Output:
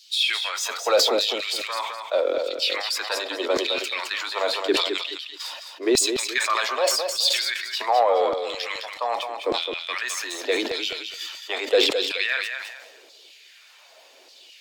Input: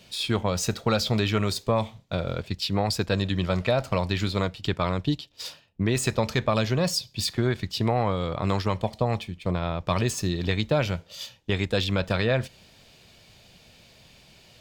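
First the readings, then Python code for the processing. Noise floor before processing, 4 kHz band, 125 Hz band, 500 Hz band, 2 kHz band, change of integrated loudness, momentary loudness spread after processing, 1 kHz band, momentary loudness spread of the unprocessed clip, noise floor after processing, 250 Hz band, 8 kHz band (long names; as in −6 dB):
−56 dBFS, +8.0 dB, below −30 dB, +3.5 dB, +6.5 dB, +3.0 dB, 10 LU, +4.0 dB, 6 LU, −52 dBFS, −6.0 dB, +6.5 dB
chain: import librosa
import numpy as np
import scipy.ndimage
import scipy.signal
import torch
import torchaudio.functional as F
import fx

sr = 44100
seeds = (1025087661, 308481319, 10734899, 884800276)

p1 = fx.spec_quant(x, sr, step_db=15)
p2 = scipy.signal.sosfilt(scipy.signal.butter(16, 250.0, 'highpass', fs=sr, output='sos'), p1)
p3 = 10.0 ** (-27.0 / 20.0) * np.tanh(p2 / 10.0 ** (-27.0 / 20.0))
p4 = p2 + (p3 * 10.0 ** (-11.0 / 20.0))
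p5 = fx.filter_lfo_highpass(p4, sr, shape='saw_down', hz=0.84, low_hz=330.0, high_hz=4600.0, q=2.7)
p6 = p5 + fx.echo_feedback(p5, sr, ms=212, feedback_pct=26, wet_db=-7.0, dry=0)
y = fx.sustainer(p6, sr, db_per_s=50.0)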